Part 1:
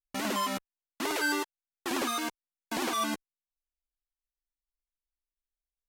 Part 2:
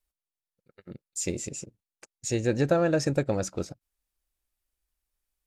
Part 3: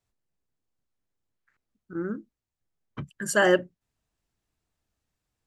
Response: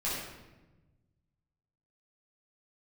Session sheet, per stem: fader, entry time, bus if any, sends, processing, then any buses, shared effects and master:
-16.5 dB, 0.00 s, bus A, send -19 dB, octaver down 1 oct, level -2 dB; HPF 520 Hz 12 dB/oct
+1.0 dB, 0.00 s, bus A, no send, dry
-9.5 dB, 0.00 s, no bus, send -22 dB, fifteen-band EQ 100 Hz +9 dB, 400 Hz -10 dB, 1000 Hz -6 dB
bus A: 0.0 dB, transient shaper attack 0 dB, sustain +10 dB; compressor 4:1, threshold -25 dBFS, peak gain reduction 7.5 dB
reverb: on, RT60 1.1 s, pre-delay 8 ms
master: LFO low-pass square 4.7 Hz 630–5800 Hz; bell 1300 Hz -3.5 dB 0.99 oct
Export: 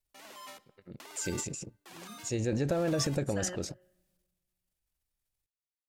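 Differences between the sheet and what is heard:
stem 2 +1.0 dB -> -5.0 dB; stem 3 -9.5 dB -> -17.5 dB; master: missing LFO low-pass square 4.7 Hz 630–5800 Hz

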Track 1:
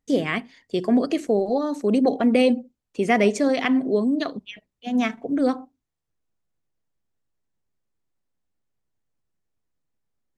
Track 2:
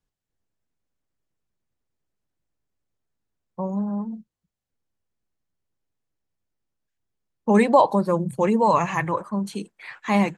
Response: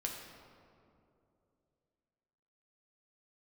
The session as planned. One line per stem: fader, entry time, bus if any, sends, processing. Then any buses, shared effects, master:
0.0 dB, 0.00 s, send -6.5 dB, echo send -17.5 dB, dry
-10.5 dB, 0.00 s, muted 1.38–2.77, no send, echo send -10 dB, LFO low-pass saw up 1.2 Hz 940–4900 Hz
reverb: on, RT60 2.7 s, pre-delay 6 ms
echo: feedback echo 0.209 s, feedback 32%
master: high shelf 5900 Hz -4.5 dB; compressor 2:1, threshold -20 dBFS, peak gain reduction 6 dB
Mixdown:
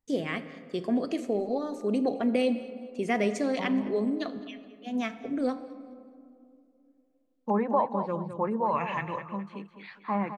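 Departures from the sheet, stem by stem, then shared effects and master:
stem 1 0.0 dB -> -10.5 dB; master: missing high shelf 5900 Hz -4.5 dB

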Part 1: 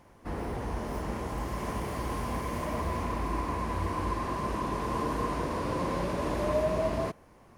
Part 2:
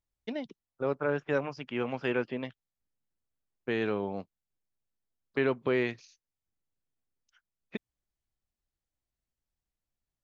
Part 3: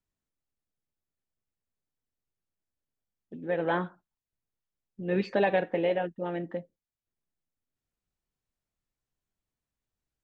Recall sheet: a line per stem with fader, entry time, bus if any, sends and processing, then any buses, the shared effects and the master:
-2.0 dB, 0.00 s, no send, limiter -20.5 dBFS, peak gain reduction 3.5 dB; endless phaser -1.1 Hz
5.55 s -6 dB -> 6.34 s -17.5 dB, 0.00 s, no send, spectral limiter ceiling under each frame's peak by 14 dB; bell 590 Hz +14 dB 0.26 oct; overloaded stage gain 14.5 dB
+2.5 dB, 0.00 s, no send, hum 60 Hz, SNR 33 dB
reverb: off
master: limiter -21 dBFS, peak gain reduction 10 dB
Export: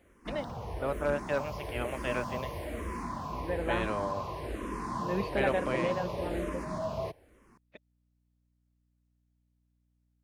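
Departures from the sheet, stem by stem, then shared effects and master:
stem 3 +2.5 dB -> -5.0 dB; master: missing limiter -21 dBFS, peak gain reduction 10 dB

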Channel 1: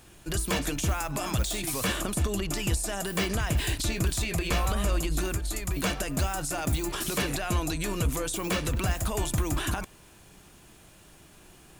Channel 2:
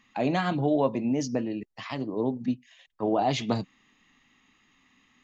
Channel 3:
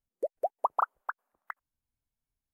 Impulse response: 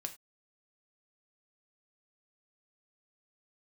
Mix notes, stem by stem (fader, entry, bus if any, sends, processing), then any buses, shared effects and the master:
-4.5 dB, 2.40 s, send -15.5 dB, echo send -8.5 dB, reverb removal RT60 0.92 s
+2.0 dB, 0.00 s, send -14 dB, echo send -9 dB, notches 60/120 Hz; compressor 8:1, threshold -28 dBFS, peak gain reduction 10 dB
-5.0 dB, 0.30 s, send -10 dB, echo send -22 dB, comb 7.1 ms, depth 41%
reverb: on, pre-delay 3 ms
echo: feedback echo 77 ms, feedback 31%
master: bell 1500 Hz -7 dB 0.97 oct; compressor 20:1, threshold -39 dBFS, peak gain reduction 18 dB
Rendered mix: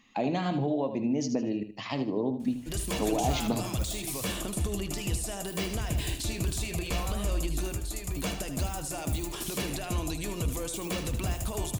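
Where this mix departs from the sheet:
stem 1: missing reverb removal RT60 0.92 s; stem 3: muted; master: missing compressor 20:1, threshold -39 dBFS, peak gain reduction 18 dB

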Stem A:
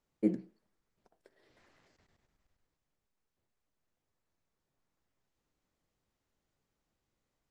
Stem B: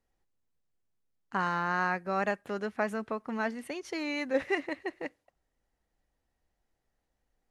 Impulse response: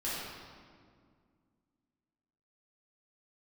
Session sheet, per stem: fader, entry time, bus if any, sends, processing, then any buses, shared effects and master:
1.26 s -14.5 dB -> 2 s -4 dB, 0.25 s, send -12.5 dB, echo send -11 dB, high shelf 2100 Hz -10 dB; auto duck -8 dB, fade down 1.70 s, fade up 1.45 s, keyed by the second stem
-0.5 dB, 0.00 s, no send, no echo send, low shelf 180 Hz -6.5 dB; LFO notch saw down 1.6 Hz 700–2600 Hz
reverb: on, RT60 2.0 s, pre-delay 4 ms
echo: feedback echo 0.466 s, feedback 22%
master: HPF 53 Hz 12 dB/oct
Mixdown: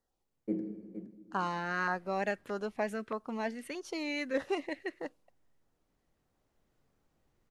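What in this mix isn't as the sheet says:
stem A -14.5 dB -> -3.5 dB; master: missing HPF 53 Hz 12 dB/oct

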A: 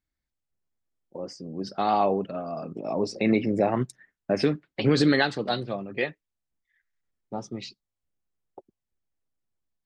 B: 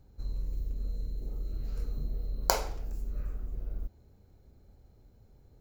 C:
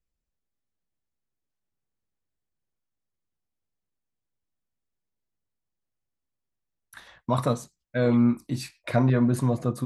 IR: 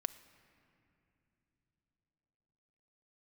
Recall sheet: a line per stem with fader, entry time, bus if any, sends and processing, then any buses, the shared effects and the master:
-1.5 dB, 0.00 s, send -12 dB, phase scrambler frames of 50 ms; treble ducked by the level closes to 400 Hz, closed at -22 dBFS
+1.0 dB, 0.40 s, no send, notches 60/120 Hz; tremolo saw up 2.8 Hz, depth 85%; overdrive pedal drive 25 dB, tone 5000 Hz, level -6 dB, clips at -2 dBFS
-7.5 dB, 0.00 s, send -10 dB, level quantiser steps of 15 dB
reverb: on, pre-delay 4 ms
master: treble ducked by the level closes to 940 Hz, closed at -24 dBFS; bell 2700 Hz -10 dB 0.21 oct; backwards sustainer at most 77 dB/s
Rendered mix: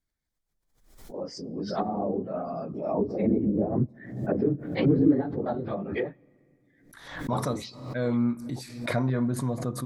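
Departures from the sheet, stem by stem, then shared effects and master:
stem B: muted; stem C: missing level quantiser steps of 15 dB; master: missing treble ducked by the level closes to 940 Hz, closed at -24 dBFS

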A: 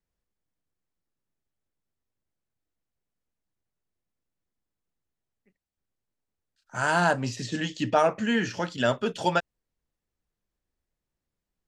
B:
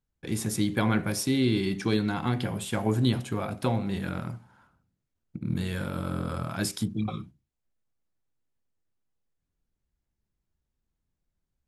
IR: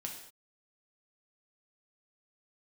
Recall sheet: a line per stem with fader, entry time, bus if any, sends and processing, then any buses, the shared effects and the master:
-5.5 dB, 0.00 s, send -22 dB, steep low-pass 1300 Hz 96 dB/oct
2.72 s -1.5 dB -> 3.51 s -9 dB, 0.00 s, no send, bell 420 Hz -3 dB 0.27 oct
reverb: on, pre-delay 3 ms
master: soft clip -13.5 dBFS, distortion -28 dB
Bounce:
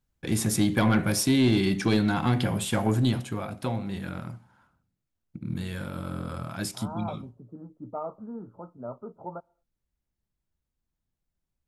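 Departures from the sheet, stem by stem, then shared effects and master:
stem A -5.5 dB -> -13.0 dB; stem B -1.5 dB -> +5.0 dB

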